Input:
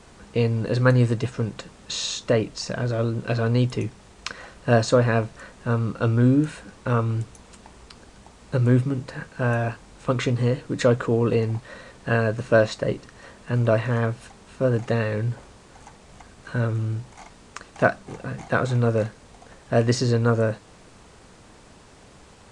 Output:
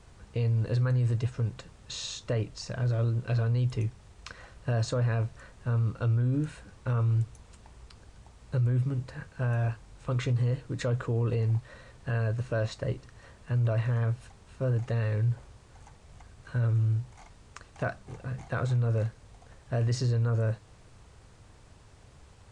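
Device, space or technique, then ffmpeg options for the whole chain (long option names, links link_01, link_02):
car stereo with a boomy subwoofer: -af "lowshelf=frequency=150:width_type=q:width=1.5:gain=8,alimiter=limit=-11.5dB:level=0:latency=1:release=15,volume=-9dB"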